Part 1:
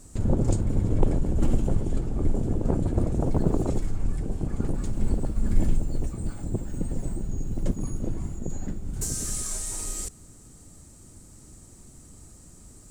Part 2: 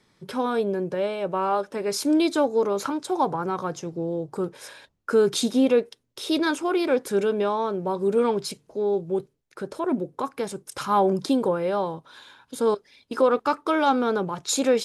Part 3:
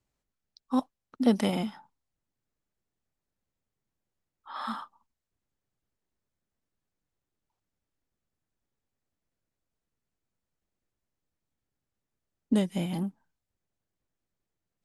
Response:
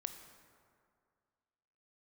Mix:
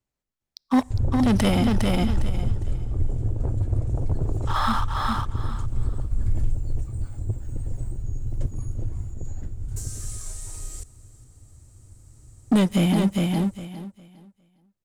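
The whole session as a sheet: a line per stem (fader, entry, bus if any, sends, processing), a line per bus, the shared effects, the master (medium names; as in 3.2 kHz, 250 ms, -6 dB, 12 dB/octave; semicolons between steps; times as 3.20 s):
-7.0 dB, 0.75 s, no send, echo send -21 dB, resonant low shelf 140 Hz +7 dB, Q 3
mute
+1.5 dB, 0.00 s, send -18.5 dB, echo send -3.5 dB, waveshaping leveller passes 3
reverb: on, RT60 2.2 s, pre-delay 18 ms
echo: feedback delay 407 ms, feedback 22%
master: peak limiter -13 dBFS, peak gain reduction 7.5 dB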